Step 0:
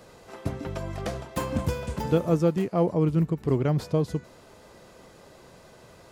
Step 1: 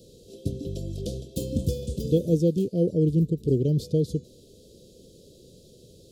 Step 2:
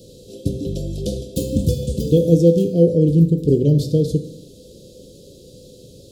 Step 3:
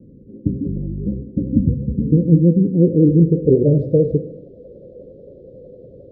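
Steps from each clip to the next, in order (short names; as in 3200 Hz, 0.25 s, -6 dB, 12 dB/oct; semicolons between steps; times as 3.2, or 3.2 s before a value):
elliptic band-stop 480–3500 Hz, stop band 40 dB; gain +2 dB
reverb RT60 0.80 s, pre-delay 3 ms, DRR 6.5 dB; gain +7 dB
low-pass sweep 250 Hz -> 590 Hz, 2.68–3.56; vibrato 11 Hz 69 cents; gain -1 dB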